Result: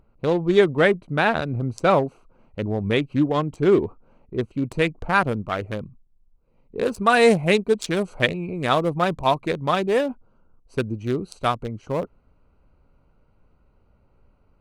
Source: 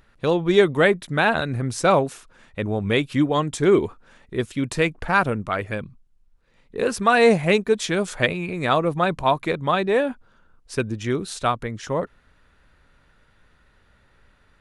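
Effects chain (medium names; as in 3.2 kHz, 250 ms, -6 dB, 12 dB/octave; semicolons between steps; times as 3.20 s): local Wiener filter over 25 samples; treble shelf 5.8 kHz -3.5 dB, from 4.56 s +3 dB, from 6.83 s +9 dB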